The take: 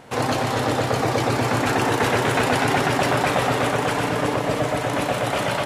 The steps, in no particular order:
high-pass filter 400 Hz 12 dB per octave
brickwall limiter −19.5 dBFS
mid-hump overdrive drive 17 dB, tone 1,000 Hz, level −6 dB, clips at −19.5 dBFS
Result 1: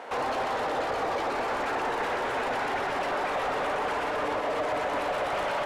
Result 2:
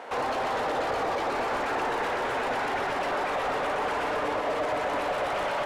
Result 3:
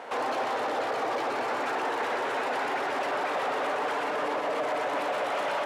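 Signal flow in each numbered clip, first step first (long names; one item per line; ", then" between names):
brickwall limiter, then high-pass filter, then mid-hump overdrive
high-pass filter, then brickwall limiter, then mid-hump overdrive
brickwall limiter, then mid-hump overdrive, then high-pass filter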